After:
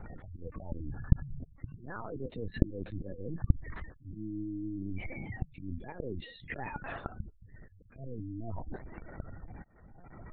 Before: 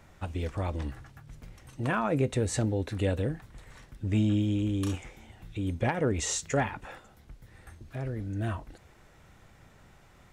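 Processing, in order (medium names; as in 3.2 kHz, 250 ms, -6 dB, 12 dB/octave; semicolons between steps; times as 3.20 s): slow attack 723 ms; spectral gate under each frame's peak -15 dB strong; reverse; compression 16:1, threshold -47 dBFS, peak gain reduction 22.5 dB; reverse; LPC vocoder at 8 kHz pitch kept; trim +12 dB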